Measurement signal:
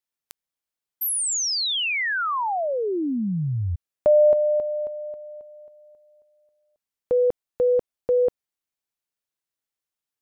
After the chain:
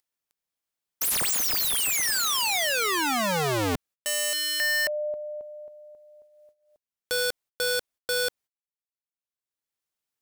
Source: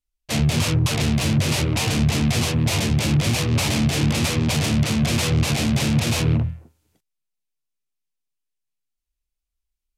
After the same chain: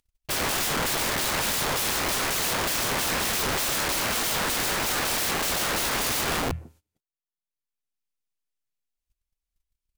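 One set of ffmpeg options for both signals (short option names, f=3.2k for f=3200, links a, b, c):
-af "aeval=exprs='(mod(17.8*val(0)+1,2)-1)/17.8':c=same,acompressor=mode=upward:threshold=-50dB:ratio=2.5:release=866:knee=2.83:detection=peak,agate=range=-23dB:threshold=-60dB:ratio=16:release=210:detection=peak,volume=3.5dB"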